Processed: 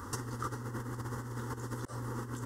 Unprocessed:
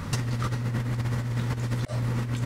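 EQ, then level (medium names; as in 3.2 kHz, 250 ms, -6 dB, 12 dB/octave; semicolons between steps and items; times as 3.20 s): bass shelf 89 Hz -12 dB; peaking EQ 4 kHz -10.5 dB 0.54 oct; static phaser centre 640 Hz, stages 6; -2.0 dB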